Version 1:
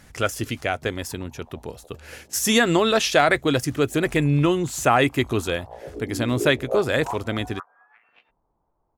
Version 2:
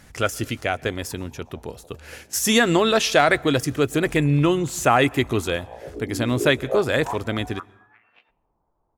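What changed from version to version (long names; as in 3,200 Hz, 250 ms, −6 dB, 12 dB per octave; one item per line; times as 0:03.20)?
reverb: on, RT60 0.85 s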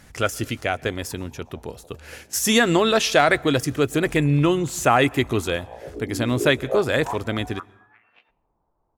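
nothing changed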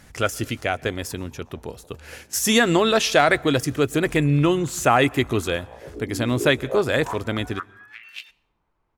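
background: remove low-pass with resonance 790 Hz, resonance Q 1.7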